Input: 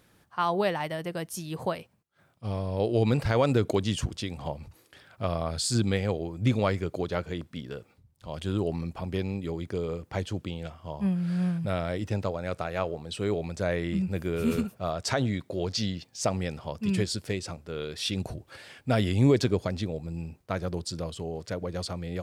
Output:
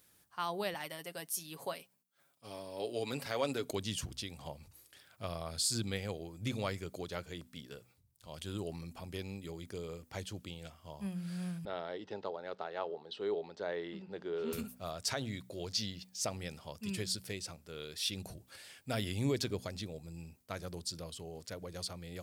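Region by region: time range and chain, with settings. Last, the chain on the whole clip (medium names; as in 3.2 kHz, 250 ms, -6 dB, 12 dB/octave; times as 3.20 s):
0.74–3.71 s: high-pass 230 Hz + comb 7.2 ms, depth 47%
11.65–14.53 s: cabinet simulation 270–3900 Hz, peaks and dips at 410 Hz +8 dB, 860 Hz +8 dB, 2.4 kHz -8 dB + band-stop 2.4 kHz, Q 17
whole clip: pre-emphasis filter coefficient 0.8; de-hum 62.05 Hz, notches 4; dynamic bell 7.7 kHz, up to -5 dB, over -55 dBFS, Q 1.6; trim +2 dB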